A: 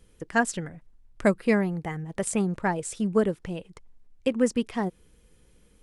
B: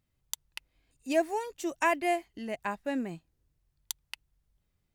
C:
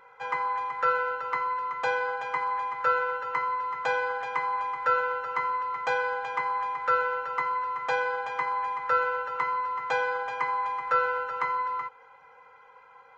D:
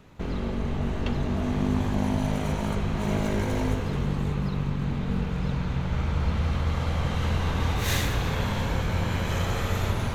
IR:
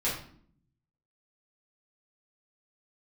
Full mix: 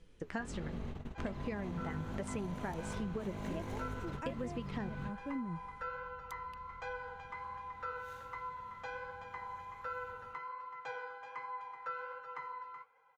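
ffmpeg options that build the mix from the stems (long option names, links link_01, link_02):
-filter_complex "[0:a]lowpass=5400,volume=1dB,asplit=2[link_01][link_02];[1:a]tiltshelf=frequency=970:gain=9,asubboost=boost=10.5:cutoff=160,adelay=2400,volume=-14dB[link_03];[2:a]adelay=950,volume=-12dB[link_04];[3:a]adelay=200,volume=-10.5dB[link_05];[link_02]apad=whole_len=456293[link_06];[link_05][link_06]sidechaingate=range=-24dB:threshold=-50dB:ratio=16:detection=peak[link_07];[link_01][link_04]amix=inputs=2:normalize=0,flanger=delay=5.9:depth=7.6:regen=51:speed=1.3:shape=sinusoidal,alimiter=limit=-21dB:level=0:latency=1:release=307,volume=0dB[link_08];[link_03][link_07][link_08]amix=inputs=3:normalize=0,acompressor=threshold=-36dB:ratio=6"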